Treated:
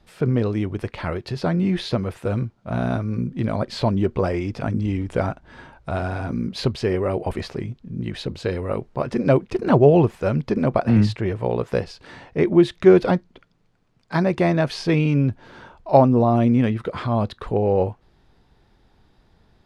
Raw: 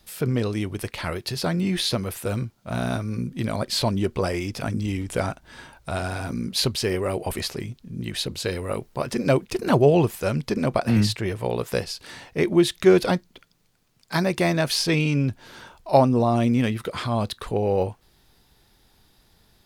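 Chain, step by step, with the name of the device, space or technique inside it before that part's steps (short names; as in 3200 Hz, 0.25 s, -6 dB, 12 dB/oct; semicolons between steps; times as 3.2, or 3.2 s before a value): through cloth (LPF 8400 Hz 12 dB/oct; high shelf 3100 Hz -17 dB); gain +3.5 dB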